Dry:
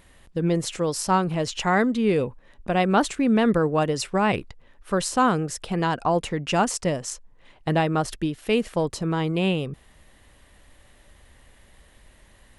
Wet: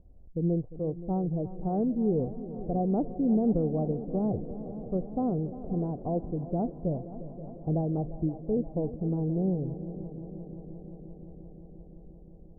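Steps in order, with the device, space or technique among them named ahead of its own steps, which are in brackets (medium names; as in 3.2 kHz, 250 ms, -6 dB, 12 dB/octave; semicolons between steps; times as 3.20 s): under water (low-pass 530 Hz 24 dB/octave; peaking EQ 730 Hz +9 dB 0.29 oct); 7.97–8.57 s: low-pass 1.1 kHz 24 dB/octave; low-pass 1.8 kHz 12 dB/octave; bass shelf 120 Hz +10.5 dB; multi-head delay 175 ms, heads second and third, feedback 72%, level -15 dB; trim -7 dB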